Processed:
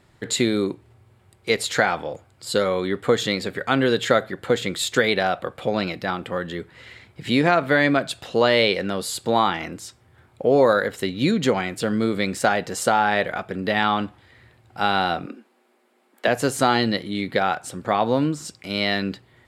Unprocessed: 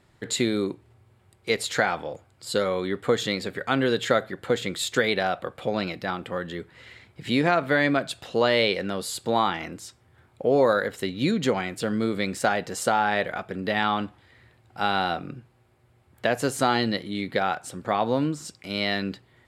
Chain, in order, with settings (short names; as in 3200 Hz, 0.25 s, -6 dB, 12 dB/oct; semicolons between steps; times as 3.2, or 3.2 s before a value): 15.26–16.28 steep high-pass 210 Hz 72 dB/oct; gain +3.5 dB